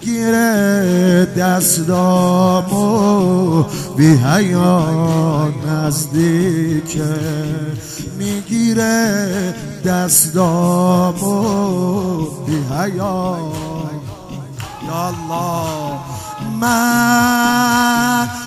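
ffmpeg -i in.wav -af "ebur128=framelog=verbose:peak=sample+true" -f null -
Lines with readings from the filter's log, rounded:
Integrated loudness:
  I:         -15.0 LUFS
  Threshold: -25.3 LUFS
Loudness range:
  LRA:         8.4 LU
  Threshold: -35.7 LUFS
  LRA low:   -21.5 LUFS
  LRA high:  -13.1 LUFS
Sample peak:
  Peak:       -2.0 dBFS
True peak:
  Peak:       -0.5 dBFS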